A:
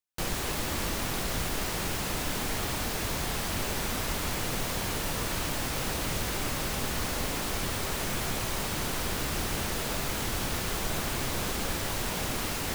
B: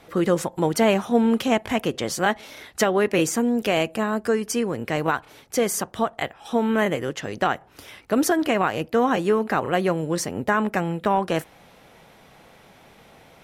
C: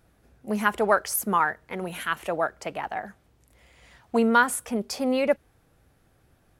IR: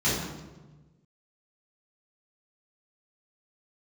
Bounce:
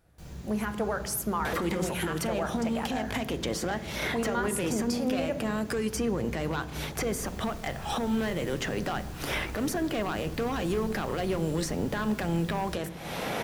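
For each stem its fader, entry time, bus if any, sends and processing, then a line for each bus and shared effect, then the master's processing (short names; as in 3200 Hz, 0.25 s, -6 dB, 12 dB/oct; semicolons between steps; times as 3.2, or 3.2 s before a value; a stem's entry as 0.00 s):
-17.5 dB, 0.00 s, no bus, send -15.5 dB, low shelf 170 Hz +9 dB; auto duck -19 dB, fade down 0.70 s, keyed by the third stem
-14.0 dB, 1.45 s, bus A, send -20.5 dB, compressor 2.5:1, threshold -35 dBFS, peak gain reduction 14.5 dB; sine folder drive 7 dB, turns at -17.5 dBFS; three-band squash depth 100%
-4.0 dB, 0.00 s, bus A, send -18 dB, compressor 2:1, threshold -37 dBFS, peak gain reduction 12.5 dB
bus A: 0.0 dB, AGC gain up to 9 dB; limiter -21 dBFS, peak gain reduction 10 dB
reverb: on, RT60 1.2 s, pre-delay 3 ms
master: dry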